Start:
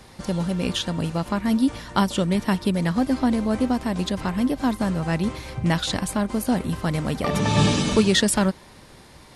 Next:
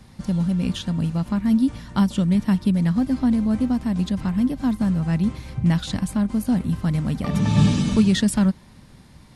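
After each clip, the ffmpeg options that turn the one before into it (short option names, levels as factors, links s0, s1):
-af "lowshelf=f=290:t=q:w=1.5:g=8,volume=0.501"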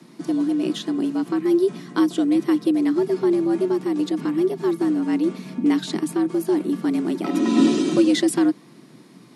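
-af "afreqshift=120"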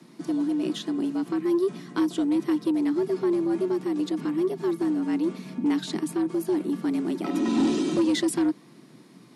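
-af "asoftclip=type=tanh:threshold=0.237,volume=0.668"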